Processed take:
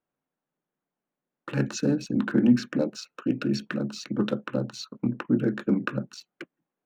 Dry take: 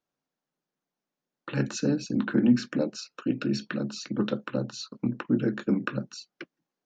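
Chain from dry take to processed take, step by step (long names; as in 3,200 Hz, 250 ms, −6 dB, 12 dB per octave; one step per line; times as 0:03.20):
adaptive Wiener filter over 9 samples
level +1.5 dB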